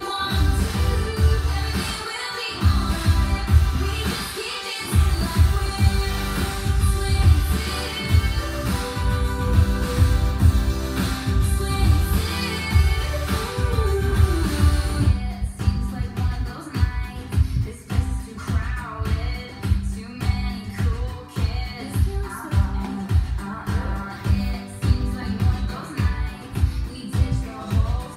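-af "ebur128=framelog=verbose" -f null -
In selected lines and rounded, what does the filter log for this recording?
Integrated loudness:
  I:         -23.1 LUFS
  Threshold: -33.1 LUFS
Loudness range:
  LRA:         4.9 LU
  Threshold: -43.1 LUFS
  LRA low:   -26.1 LUFS
  LRA high:  -21.2 LUFS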